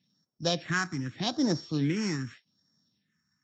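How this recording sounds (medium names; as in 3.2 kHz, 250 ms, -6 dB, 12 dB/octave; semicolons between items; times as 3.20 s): a buzz of ramps at a fixed pitch in blocks of 8 samples; phasing stages 4, 0.83 Hz, lowest notch 540–2700 Hz; Vorbis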